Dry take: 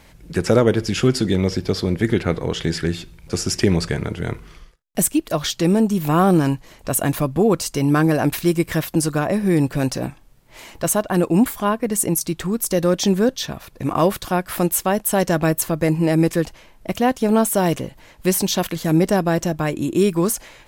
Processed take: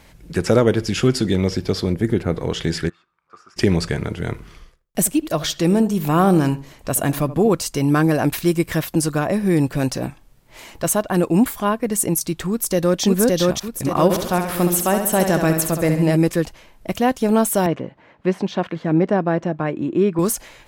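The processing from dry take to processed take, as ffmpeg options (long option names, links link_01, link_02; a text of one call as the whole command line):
ffmpeg -i in.wav -filter_complex "[0:a]asplit=3[link_01][link_02][link_03];[link_01]afade=type=out:start_time=1.92:duration=0.02[link_04];[link_02]equalizer=frequency=3100:width_type=o:width=2.7:gain=-8.5,afade=type=in:start_time=1.92:duration=0.02,afade=type=out:start_time=2.36:duration=0.02[link_05];[link_03]afade=type=in:start_time=2.36:duration=0.02[link_06];[link_04][link_05][link_06]amix=inputs=3:normalize=0,asplit=3[link_07][link_08][link_09];[link_07]afade=type=out:start_time=2.88:duration=0.02[link_10];[link_08]bandpass=frequency=1200:width_type=q:width=8.5,afade=type=in:start_time=2.88:duration=0.02,afade=type=out:start_time=3.56:duration=0.02[link_11];[link_09]afade=type=in:start_time=3.56:duration=0.02[link_12];[link_10][link_11][link_12]amix=inputs=3:normalize=0,asettb=1/sr,asplit=3[link_13][link_14][link_15];[link_13]atrim=end=4.324[link_16];[link_14]atrim=start=4.32:end=7.5,asetpts=PTS-STARTPTS,afade=type=in:duration=0.004:curve=qsin,afade=type=out:start_time=3.176:duration=0.004:curve=qsin,asplit=2[link_17][link_18];[link_18]adelay=78,lowpass=frequency=1300:poles=1,volume=-14dB,asplit=2[link_19][link_20];[link_20]adelay=78,lowpass=frequency=1300:poles=1,volume=0.26,asplit=2[link_21][link_22];[link_22]adelay=78,lowpass=frequency=1300:poles=1,volume=0.26[link_23];[link_17][link_19][link_21][link_23]amix=inputs=4:normalize=0,atrim=end_sample=140238[link_24];[link_15]atrim=start=7.496[link_25];[link_16][link_24]acrossfade=duration=0.004:curve1=hsin:curve2=qsin[link_26];[link_26][link_25]acrossfade=duration=0.004:curve1=qsin:curve2=hsin,asplit=2[link_27][link_28];[link_28]afade=type=in:start_time=12.49:duration=0.01,afade=type=out:start_time=13.02:duration=0.01,aecho=0:1:570|1140|1710|2280|2850|3420:0.944061|0.424827|0.191172|0.0860275|0.0387124|0.0174206[link_29];[link_27][link_29]amix=inputs=2:normalize=0,asplit=3[link_30][link_31][link_32];[link_30]afade=type=out:start_time=14.09:duration=0.02[link_33];[link_31]aecho=1:1:68|136|204|272|340|408:0.473|0.241|0.123|0.0628|0.032|0.0163,afade=type=in:start_time=14.09:duration=0.02,afade=type=out:start_time=16.15:duration=0.02[link_34];[link_32]afade=type=in:start_time=16.15:duration=0.02[link_35];[link_33][link_34][link_35]amix=inputs=3:normalize=0,asettb=1/sr,asplit=3[link_36][link_37][link_38];[link_36]atrim=end=17.664[link_39];[link_37]atrim=start=17.66:end=20.19,asetpts=PTS-STARTPTS,afade=type=in:duration=0.004:curve=qsin,afade=type=out:start_time=2.526:duration=0.004:curve=qsin,highpass=140,lowpass=2000[link_40];[link_38]atrim=start=20.186[link_41];[link_39][link_40]acrossfade=duration=0.004:curve1=hsin:curve2=qsin[link_42];[link_42][link_41]acrossfade=duration=0.004:curve1=qsin:curve2=hsin" out.wav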